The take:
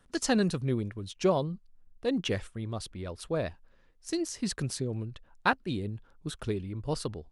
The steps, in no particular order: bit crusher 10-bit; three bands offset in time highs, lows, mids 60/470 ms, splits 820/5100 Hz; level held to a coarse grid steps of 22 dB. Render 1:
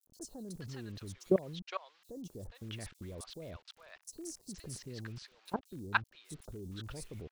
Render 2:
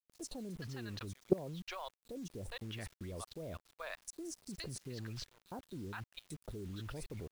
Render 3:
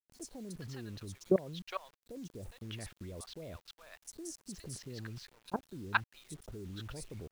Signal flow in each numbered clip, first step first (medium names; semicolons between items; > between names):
level held to a coarse grid > bit crusher > three bands offset in time; three bands offset in time > level held to a coarse grid > bit crusher; level held to a coarse grid > three bands offset in time > bit crusher